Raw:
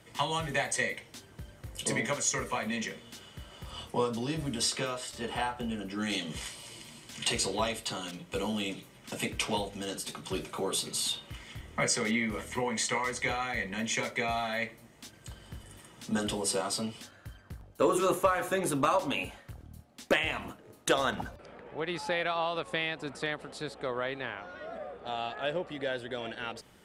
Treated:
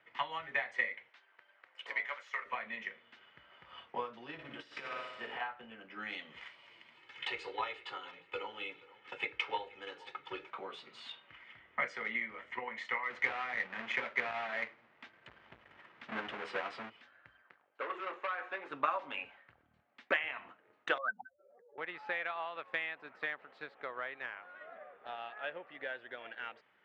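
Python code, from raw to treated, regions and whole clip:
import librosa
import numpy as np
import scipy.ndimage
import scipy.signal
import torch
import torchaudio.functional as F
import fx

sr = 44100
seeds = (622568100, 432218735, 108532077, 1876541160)

y = fx.chain(x, sr, fx.self_delay(depth_ms=0.068),
    fx.highpass(hz=630.0, slope=12), at=(1.09, 2.46))
y = fx.chain(y, sr, fx.room_flutter(wall_m=10.1, rt60_s=1.1),
    fx.over_compress(threshold_db=-32.0, ratio=-0.5), at=(4.33, 5.41))
y = fx.chain(y, sr, fx.comb(ms=2.3, depth=0.74),
    fx.echo_feedback(ms=476, feedback_pct=27, wet_db=-17.5), at=(6.94, 10.5))
y = fx.chain(y, sr, fx.halfwave_hold(),
    fx.transformer_sat(knee_hz=260.0), at=(13.1, 16.9))
y = fx.chain(y, sr, fx.overload_stage(gain_db=27.0),
    fx.bandpass_edges(low_hz=330.0, high_hz=6100.0), at=(17.42, 18.71))
y = fx.chain(y, sr, fx.spec_expand(power=3.8),
    fx.highpass(hz=250.0, slope=12), at=(20.98, 21.78))
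y = scipy.signal.sosfilt(scipy.signal.butter(4, 2100.0, 'lowpass', fs=sr, output='sos'), y)
y = np.diff(y, prepend=0.0)
y = fx.transient(y, sr, attack_db=5, sustain_db=-1)
y = F.gain(torch.from_numpy(y), 9.0).numpy()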